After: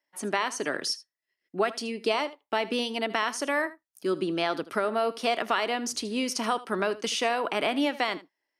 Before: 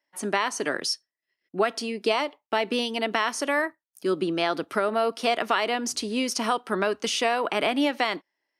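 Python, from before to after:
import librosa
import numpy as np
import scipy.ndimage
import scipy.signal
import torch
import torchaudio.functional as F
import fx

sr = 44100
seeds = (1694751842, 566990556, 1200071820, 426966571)

y = x + 10.0 ** (-17.5 / 20.0) * np.pad(x, (int(78 * sr / 1000.0), 0))[:len(x)]
y = y * librosa.db_to_amplitude(-2.5)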